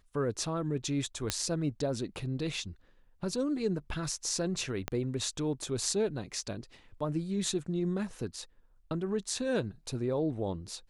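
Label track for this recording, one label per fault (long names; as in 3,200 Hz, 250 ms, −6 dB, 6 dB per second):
1.300000	1.300000	click −12 dBFS
4.880000	4.880000	click −17 dBFS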